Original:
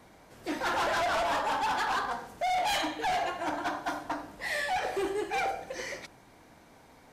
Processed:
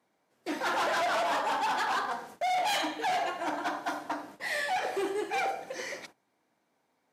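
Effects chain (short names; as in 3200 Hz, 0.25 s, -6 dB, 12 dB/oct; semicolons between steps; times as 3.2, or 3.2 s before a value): HPF 190 Hz 12 dB/oct; gate -48 dBFS, range -18 dB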